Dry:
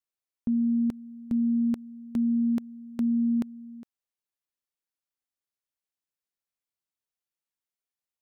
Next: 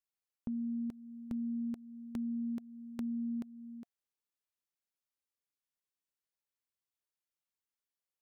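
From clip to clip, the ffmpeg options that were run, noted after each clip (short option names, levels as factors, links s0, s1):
-af "bandreject=f=700:w=12,acompressor=threshold=0.0126:ratio=2,volume=0.631"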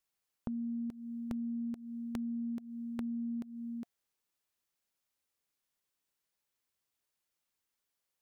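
-af "acompressor=threshold=0.00708:ratio=6,aeval=exprs='0.0335*(abs(mod(val(0)/0.0335+3,4)-2)-1)':c=same,volume=2.24"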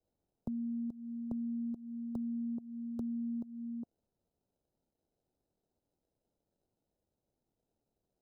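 -filter_complex "[0:a]acrossover=split=120|390|1000[s0][s1][s2][s3];[s3]acrusher=samples=39:mix=1:aa=0.000001[s4];[s0][s1][s2][s4]amix=inputs=4:normalize=0,asuperstop=centerf=2100:order=4:qfactor=0.84"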